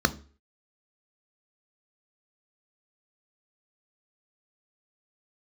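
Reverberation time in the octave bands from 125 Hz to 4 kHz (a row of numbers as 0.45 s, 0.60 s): 0.40 s, 0.40 s, 0.45 s, 0.40 s, 0.40 s, 0.35 s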